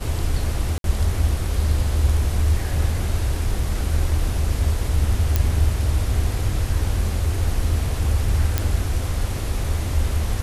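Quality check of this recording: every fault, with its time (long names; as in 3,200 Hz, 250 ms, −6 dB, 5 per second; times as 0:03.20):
0:00.78–0:00.84: drop-out 62 ms
0:05.36: click
0:08.58: click −5 dBFS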